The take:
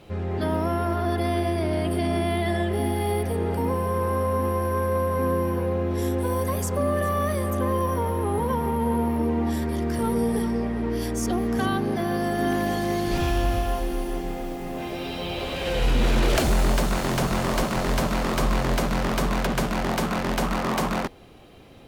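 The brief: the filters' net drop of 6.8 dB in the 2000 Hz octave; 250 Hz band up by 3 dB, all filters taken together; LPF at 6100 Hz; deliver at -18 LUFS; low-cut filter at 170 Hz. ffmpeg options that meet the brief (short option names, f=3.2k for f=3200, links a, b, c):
-af "highpass=170,lowpass=6.1k,equalizer=f=250:t=o:g=5,equalizer=f=2k:t=o:g=-9,volume=7dB"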